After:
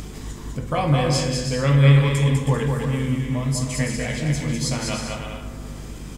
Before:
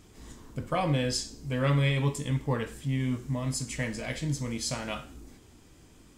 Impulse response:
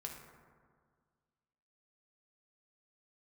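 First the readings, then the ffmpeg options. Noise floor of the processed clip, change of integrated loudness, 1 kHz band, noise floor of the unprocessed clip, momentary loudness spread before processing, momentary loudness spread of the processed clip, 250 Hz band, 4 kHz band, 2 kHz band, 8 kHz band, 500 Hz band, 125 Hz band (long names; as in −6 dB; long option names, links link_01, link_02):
−35 dBFS, +9.0 dB, +7.5 dB, −56 dBFS, 13 LU, 19 LU, +8.5 dB, +7.0 dB, +7.0 dB, +7.0 dB, +8.0 dB, +10.5 dB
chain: -filter_complex "[0:a]aecho=1:1:200|320|392|435.2|461.1:0.631|0.398|0.251|0.158|0.1,asplit=2[link_01][link_02];[1:a]atrim=start_sample=2205[link_03];[link_02][link_03]afir=irnorm=-1:irlink=0,volume=2dB[link_04];[link_01][link_04]amix=inputs=2:normalize=0,acompressor=mode=upward:threshold=-27dB:ratio=2.5,aeval=exprs='val(0)+0.0178*(sin(2*PI*50*n/s)+sin(2*PI*2*50*n/s)/2+sin(2*PI*3*50*n/s)/3+sin(2*PI*4*50*n/s)/4+sin(2*PI*5*50*n/s)/5)':channel_layout=same"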